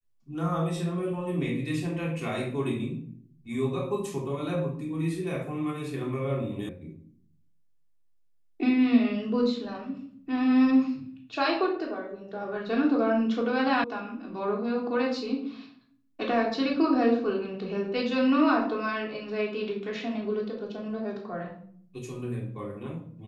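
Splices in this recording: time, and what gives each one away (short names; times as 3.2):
6.69 sound cut off
13.84 sound cut off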